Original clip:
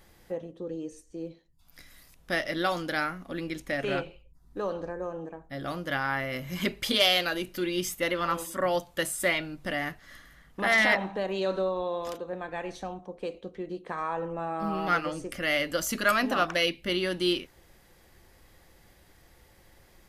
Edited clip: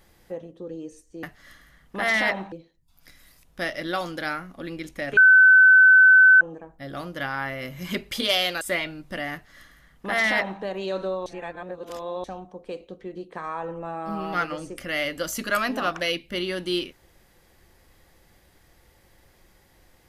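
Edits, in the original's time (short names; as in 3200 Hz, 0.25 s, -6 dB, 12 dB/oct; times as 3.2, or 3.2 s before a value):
3.88–5.12 bleep 1520 Hz -9.5 dBFS
7.32–9.15 cut
9.87–11.16 copy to 1.23
11.8–12.78 reverse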